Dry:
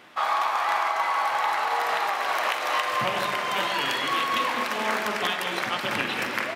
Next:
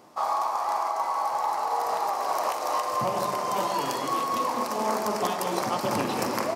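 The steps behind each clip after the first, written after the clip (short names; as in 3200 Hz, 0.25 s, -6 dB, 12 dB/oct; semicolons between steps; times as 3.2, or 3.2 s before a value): band shelf 2300 Hz -15 dB; vocal rider; gain +1.5 dB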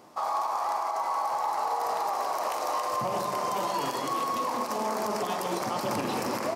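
limiter -20.5 dBFS, peak gain reduction 10 dB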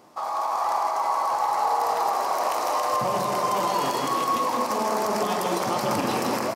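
AGC gain up to 4 dB; echo 0.161 s -5.5 dB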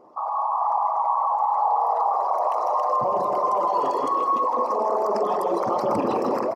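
formant sharpening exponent 2; gain +2 dB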